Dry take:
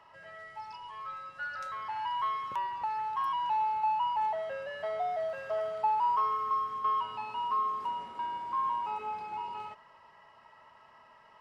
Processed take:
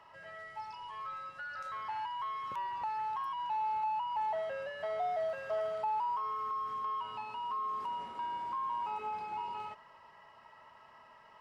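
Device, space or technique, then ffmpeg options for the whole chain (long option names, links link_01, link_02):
de-esser from a sidechain: -filter_complex "[0:a]asplit=2[link_01][link_02];[link_02]highpass=4100,apad=whole_len=503101[link_03];[link_01][link_03]sidechaincompress=threshold=-58dB:ratio=8:attack=5:release=25"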